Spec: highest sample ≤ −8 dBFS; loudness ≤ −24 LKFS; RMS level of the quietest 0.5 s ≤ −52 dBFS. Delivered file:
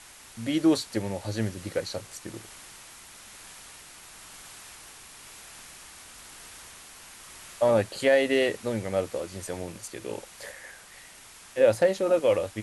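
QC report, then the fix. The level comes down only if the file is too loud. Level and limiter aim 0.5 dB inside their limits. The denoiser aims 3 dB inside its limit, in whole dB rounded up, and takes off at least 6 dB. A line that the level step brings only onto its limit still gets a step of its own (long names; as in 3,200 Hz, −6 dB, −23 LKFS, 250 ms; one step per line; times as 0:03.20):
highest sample −8.5 dBFS: in spec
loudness −26.5 LKFS: in spec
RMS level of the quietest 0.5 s −50 dBFS: out of spec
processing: broadband denoise 6 dB, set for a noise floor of −50 dBFS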